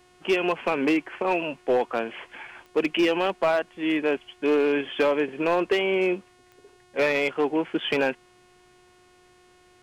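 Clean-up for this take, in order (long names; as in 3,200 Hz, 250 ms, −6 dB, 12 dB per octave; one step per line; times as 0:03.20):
clipped peaks rebuilt −15.5 dBFS
click removal
hum removal 361.8 Hz, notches 29
repair the gap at 0:07.80, 3.8 ms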